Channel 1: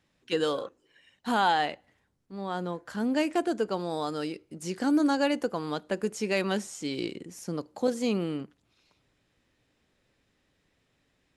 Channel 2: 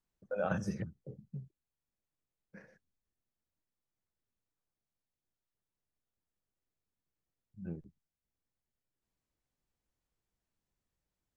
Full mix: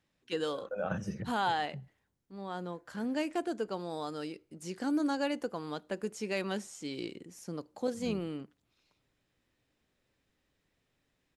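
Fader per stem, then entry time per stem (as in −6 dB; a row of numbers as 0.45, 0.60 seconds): −6.5, −1.0 decibels; 0.00, 0.40 seconds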